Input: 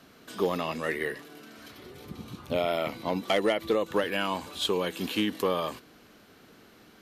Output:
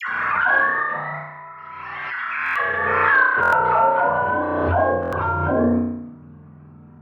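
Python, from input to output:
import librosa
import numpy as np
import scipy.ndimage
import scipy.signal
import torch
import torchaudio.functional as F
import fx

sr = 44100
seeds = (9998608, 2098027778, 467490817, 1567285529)

p1 = fx.octave_mirror(x, sr, pivot_hz=540.0)
p2 = fx.band_shelf(p1, sr, hz=1600.0, db=9.5, octaves=1.7)
p3 = fx.level_steps(p2, sr, step_db=14)
p4 = p2 + (p3 * librosa.db_to_amplitude(2.0))
p5 = 10.0 ** (-11.5 / 20.0) * np.tanh(p4 / 10.0 ** (-11.5 / 20.0))
p6 = fx.dispersion(p5, sr, late='lows', ms=86.0, hz=1000.0)
p7 = p6 + fx.room_flutter(p6, sr, wall_m=5.7, rt60_s=0.89, dry=0)
p8 = fx.filter_sweep_bandpass(p7, sr, from_hz=1700.0, to_hz=220.0, start_s=3.16, end_s=6.24, q=1.9)
p9 = fx.buffer_glitch(p8, sr, at_s=(2.44, 3.41, 5.01), block=1024, repeats=4)
p10 = fx.pre_swell(p9, sr, db_per_s=21.0)
y = p10 * librosa.db_to_amplitude(6.5)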